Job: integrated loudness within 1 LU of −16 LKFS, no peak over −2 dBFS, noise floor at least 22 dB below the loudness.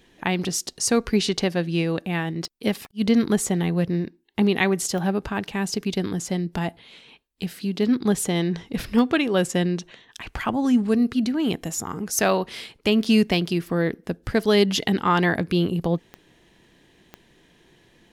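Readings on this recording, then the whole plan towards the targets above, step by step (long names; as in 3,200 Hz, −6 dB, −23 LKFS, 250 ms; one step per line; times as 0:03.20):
number of clicks 7; integrated loudness −23.5 LKFS; sample peak −8.0 dBFS; target loudness −16.0 LKFS
→ click removal
level +7.5 dB
brickwall limiter −2 dBFS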